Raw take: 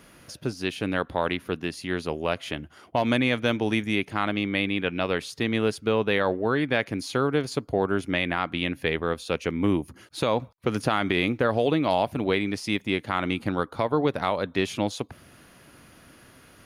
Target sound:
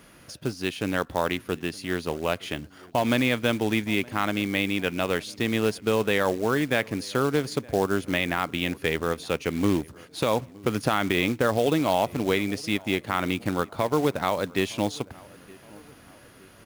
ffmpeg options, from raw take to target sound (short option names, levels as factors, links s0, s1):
-filter_complex "[0:a]asplit=2[s0][s1];[s1]adelay=917,lowpass=f=1800:p=1,volume=0.0708,asplit=2[s2][s3];[s3]adelay=917,lowpass=f=1800:p=1,volume=0.53,asplit=2[s4][s5];[s5]adelay=917,lowpass=f=1800:p=1,volume=0.53,asplit=2[s6][s7];[s7]adelay=917,lowpass=f=1800:p=1,volume=0.53[s8];[s0][s2][s4][s6][s8]amix=inputs=5:normalize=0,acrusher=bits=4:mode=log:mix=0:aa=0.000001"